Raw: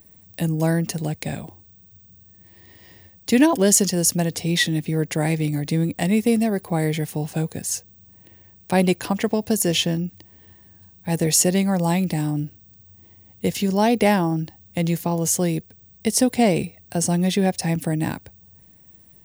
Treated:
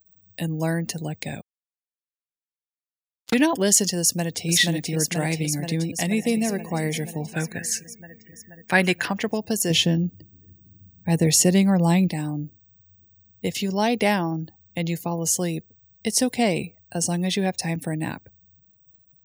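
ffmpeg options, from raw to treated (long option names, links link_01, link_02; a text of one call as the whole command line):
ffmpeg -i in.wav -filter_complex "[0:a]asettb=1/sr,asplit=3[link_01][link_02][link_03];[link_01]atrim=end=1.414[link_04];[link_02]atrim=start=1.41:end=3.34,asetpts=PTS-STARTPTS,afade=type=in:duration=0.004:curve=qsin,afade=type=out:start_time=1.926:duration=0.004:curve=qsin,acrusher=bits=2:mix=0:aa=0.5[link_05];[link_03]atrim=start=3.336[link_06];[link_04][link_05]acrossfade=duration=0.004:curve1=hsin:curve2=qsin[link_07];[link_07][link_06]acrossfade=duration=0.004:curve1=qsin:curve2=hsin,asplit=2[link_08][link_09];[link_09]afade=type=in:start_time=4:duration=0.01,afade=type=out:start_time=4.47:duration=0.01,aecho=0:1:480|960|1440|1920|2400|2880|3360|3840|4320|4800|5280|5760:0.749894|0.562421|0.421815|0.316362|0.237271|0.177953|0.133465|0.100099|0.0750741|0.0563056|0.0422292|0.0316719[link_10];[link_08][link_10]amix=inputs=2:normalize=0,asplit=2[link_11][link_12];[link_12]afade=type=in:start_time=5.9:duration=0.01,afade=type=out:start_time=6.34:duration=0.01,aecho=0:1:230|460|690|920|1150|1380|1610|1840|2070|2300|2530:0.188365|0.141274|0.105955|0.0794664|0.0595998|0.0446999|0.0335249|0.0251437|0.0188578|0.0141433|0.0106075[link_13];[link_11][link_13]amix=inputs=2:normalize=0,asettb=1/sr,asplit=3[link_14][link_15][link_16];[link_14]atrim=end=7.334[link_17];[link_15]atrim=start=7.33:end=9.11,asetpts=PTS-STARTPTS,afade=type=in:duration=0.004:curve=qsin,afade=type=out:start_time=1.776:duration=0.004:curve=qsin,equalizer=frequency=1700:width_type=o:width=0.86:gain=12.5[link_18];[link_16]atrim=start=9.106[link_19];[link_17][link_18]acrossfade=duration=0.004:curve1=hsin:curve2=qsin[link_20];[link_20][link_19]acrossfade=duration=0.004:curve1=qsin:curve2=hsin,asettb=1/sr,asplit=3[link_21][link_22][link_23];[link_21]atrim=end=9.704[link_24];[link_22]atrim=start=9.7:end=12.08,asetpts=PTS-STARTPTS,afade=type=in:duration=0.004:curve=qsin,afade=type=out:start_time=2.376:duration=0.004:curve=qsin,lowshelf=frequency=400:gain=8.5[link_25];[link_23]atrim=start=12.076[link_26];[link_24][link_25]acrossfade=duration=0.004:curve1=hsin:curve2=qsin[link_27];[link_27][link_26]acrossfade=duration=0.004:curve1=qsin:curve2=hsin,asettb=1/sr,asplit=3[link_28][link_29][link_30];[link_28]atrim=end=15.104[link_31];[link_29]atrim=start=15.1:end=16.18,asetpts=PTS-STARTPTS,afade=type=in:duration=0.004:curve=qsin,afade=type=out:start_time=1.076:duration=0.004:curve=qsin,bandreject=frequency=2300:width=14[link_32];[link_30]atrim=start=16.176[link_33];[link_31][link_32]acrossfade=duration=0.004:curve1=hsin:curve2=qsin[link_34];[link_34][link_33]acrossfade=duration=0.004:curve1=qsin:curve2=hsin,afftdn=noise_reduction=33:noise_floor=-43,highpass=74,equalizer=frequency=3600:width=0.42:gain=6,volume=-4.5dB" out.wav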